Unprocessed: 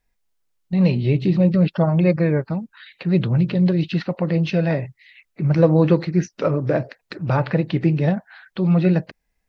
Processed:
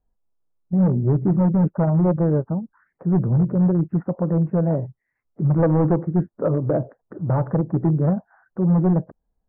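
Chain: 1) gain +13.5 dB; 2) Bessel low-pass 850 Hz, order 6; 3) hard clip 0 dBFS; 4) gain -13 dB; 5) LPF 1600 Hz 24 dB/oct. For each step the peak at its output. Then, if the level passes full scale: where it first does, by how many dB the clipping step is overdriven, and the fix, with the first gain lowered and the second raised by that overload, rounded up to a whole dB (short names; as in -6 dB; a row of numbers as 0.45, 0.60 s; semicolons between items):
+10.5, +9.5, 0.0, -13.0, -11.5 dBFS; step 1, 9.5 dB; step 1 +3.5 dB, step 4 -3 dB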